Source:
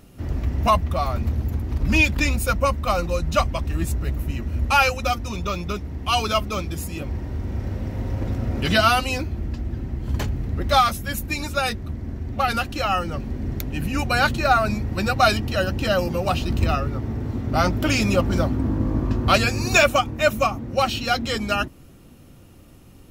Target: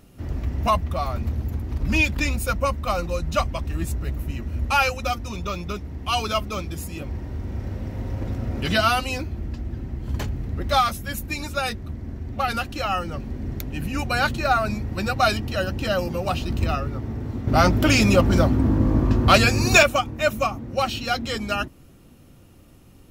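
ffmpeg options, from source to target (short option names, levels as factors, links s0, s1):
-filter_complex "[0:a]asettb=1/sr,asplit=3[s0][s1][s2];[s0]atrim=end=17.474[s3];[s1]atrim=start=17.47:end=19.83,asetpts=PTS-STARTPTS,afade=t=in:d=0.004:c=qsin,afade=t=out:st=2.356:d=0.004:c=qsin,acontrast=56[s4];[s2]atrim=start=19.826[s5];[s3][s4]acrossfade=d=0.004:c1=hsin:c2=qsin[s6];[s6][s5]acrossfade=d=0.004:c1=qsin:c2=hsin,volume=0.75"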